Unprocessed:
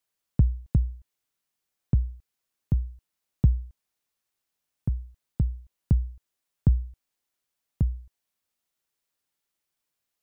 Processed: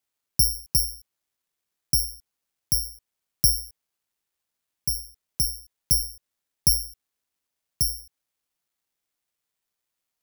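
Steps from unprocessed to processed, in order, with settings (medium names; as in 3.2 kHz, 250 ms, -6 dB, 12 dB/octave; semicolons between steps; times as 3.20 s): careless resampling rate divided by 8×, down none, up zero stuff; trim -9.5 dB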